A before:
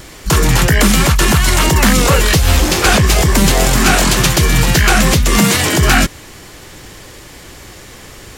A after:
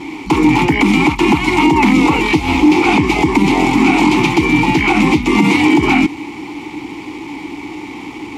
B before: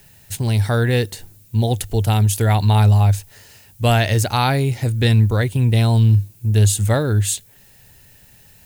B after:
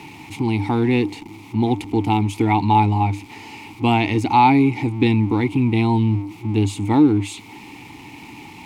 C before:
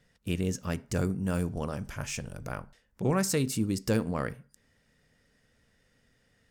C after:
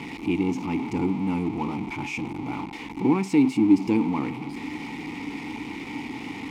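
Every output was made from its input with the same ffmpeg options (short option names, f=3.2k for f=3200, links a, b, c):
-filter_complex "[0:a]aeval=exprs='val(0)+0.5*0.0376*sgn(val(0))':c=same,asplit=3[a][b][c];[a]bandpass=f=300:t=q:w=8,volume=0dB[d];[b]bandpass=f=870:t=q:w=8,volume=-6dB[e];[c]bandpass=f=2.24k:t=q:w=8,volume=-9dB[f];[d][e][f]amix=inputs=3:normalize=0,alimiter=level_in=17dB:limit=-1dB:release=50:level=0:latency=1,volume=-1dB"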